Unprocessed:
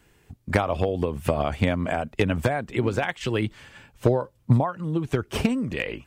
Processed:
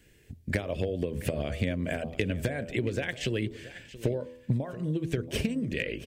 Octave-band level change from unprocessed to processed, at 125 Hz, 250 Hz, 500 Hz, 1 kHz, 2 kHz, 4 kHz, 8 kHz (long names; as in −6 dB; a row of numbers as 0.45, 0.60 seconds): −6.0, −5.5, −6.5, −16.5, −5.0, −3.0, −2.0 decibels